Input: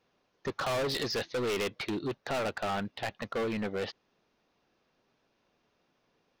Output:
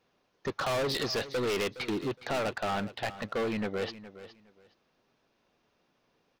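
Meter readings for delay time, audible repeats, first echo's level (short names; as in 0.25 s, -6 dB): 0.415 s, 2, -15.0 dB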